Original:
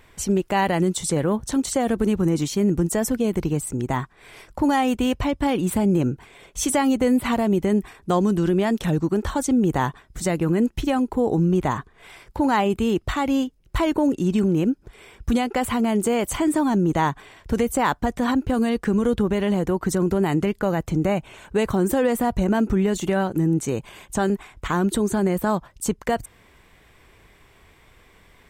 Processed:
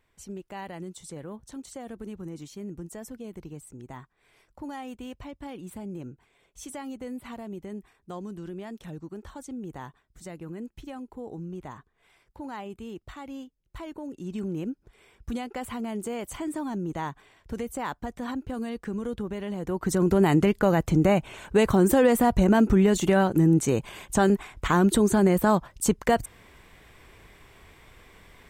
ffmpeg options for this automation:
-af "volume=1dB,afade=t=in:st=14.08:d=0.4:silence=0.473151,afade=t=in:st=19.58:d=0.64:silence=0.237137"

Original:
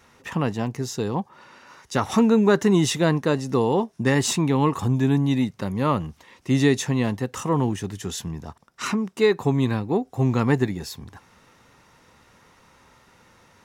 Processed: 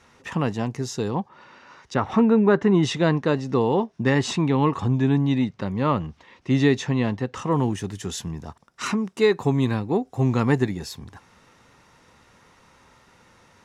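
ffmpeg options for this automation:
-af "asetnsamples=n=441:p=0,asendcmd='1.11 lowpass f 5000;1.94 lowpass f 2300;2.83 lowpass f 4500;7.51 lowpass f 11000',lowpass=9.3k"

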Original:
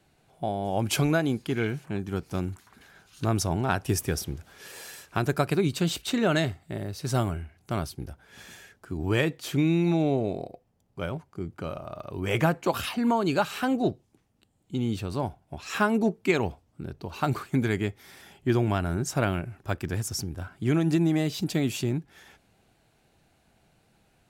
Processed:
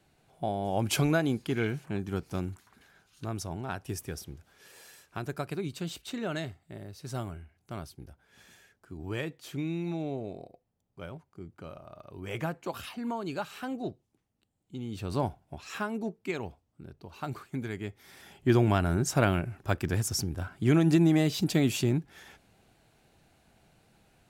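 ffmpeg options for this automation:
-af "volume=19.5dB,afade=t=out:st=2.11:d=1.15:silence=0.398107,afade=t=in:st=14.91:d=0.26:silence=0.298538,afade=t=out:st=15.17:d=0.67:silence=0.298538,afade=t=in:st=17.8:d=0.74:silence=0.281838"

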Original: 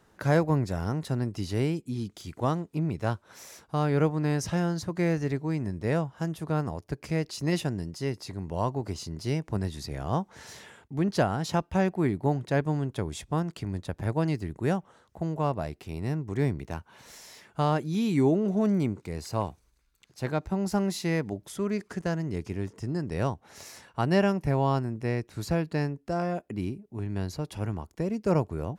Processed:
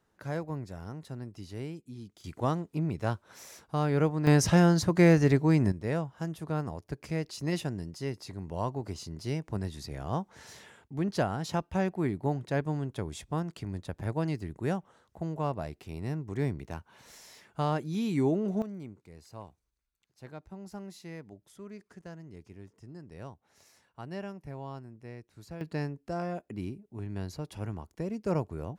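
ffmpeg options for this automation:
-af "asetnsamples=n=441:p=0,asendcmd='2.24 volume volume -2dB;4.27 volume volume 6dB;5.72 volume volume -4dB;18.62 volume volume -16dB;25.61 volume volume -5dB',volume=-11.5dB"

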